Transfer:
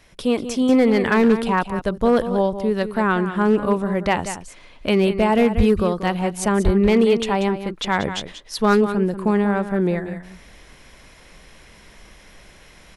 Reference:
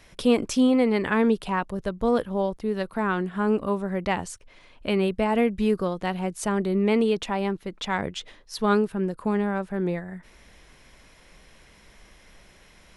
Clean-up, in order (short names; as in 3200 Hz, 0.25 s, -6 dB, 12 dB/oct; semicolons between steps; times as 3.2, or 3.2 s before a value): clip repair -9 dBFS; de-plosive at 5.56/6.64; inverse comb 0.186 s -11 dB; gain 0 dB, from 0.69 s -6 dB